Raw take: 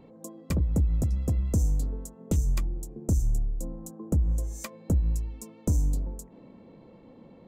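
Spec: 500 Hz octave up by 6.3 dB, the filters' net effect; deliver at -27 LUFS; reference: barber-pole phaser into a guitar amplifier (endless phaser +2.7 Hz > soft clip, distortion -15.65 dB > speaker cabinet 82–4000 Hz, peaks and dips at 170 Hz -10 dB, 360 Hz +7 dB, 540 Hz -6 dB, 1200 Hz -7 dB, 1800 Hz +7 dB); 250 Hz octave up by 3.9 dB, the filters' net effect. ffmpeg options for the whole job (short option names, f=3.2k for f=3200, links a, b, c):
-filter_complex "[0:a]equalizer=f=250:t=o:g=5,equalizer=f=500:t=o:g=5,asplit=2[a][b];[b]afreqshift=2.7[c];[a][c]amix=inputs=2:normalize=1,asoftclip=threshold=-22dB,highpass=82,equalizer=f=170:t=q:w=4:g=-10,equalizer=f=360:t=q:w=4:g=7,equalizer=f=540:t=q:w=4:g=-6,equalizer=f=1.2k:t=q:w=4:g=-7,equalizer=f=1.8k:t=q:w=4:g=7,lowpass=f=4k:w=0.5412,lowpass=f=4k:w=1.3066,volume=11dB"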